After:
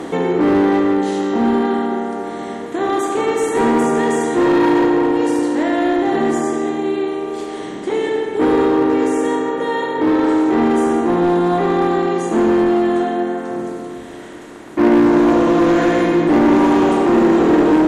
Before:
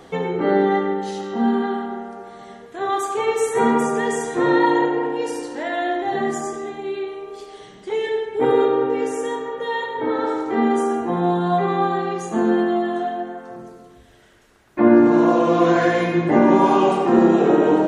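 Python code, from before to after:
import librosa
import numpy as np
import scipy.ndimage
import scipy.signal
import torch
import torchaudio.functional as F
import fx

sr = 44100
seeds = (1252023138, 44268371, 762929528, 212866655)

p1 = fx.bin_compress(x, sr, power=0.6)
p2 = fx.peak_eq(p1, sr, hz=300.0, db=9.5, octaves=0.44)
p3 = 10.0 ** (-10.0 / 20.0) * (np.abs((p2 / 10.0 ** (-10.0 / 20.0) + 3.0) % 4.0 - 2.0) - 1.0)
p4 = p2 + (p3 * 10.0 ** (-4.0 / 20.0))
y = p4 * 10.0 ** (-5.5 / 20.0)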